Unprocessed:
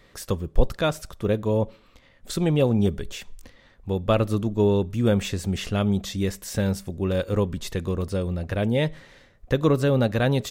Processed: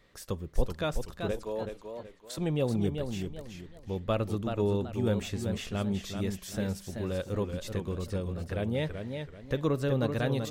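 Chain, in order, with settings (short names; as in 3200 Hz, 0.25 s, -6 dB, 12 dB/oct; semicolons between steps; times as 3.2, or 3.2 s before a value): 1.31–2.38 HPF 390 Hz 12 dB/oct; warbling echo 0.381 s, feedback 32%, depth 124 cents, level -6.5 dB; gain -8.5 dB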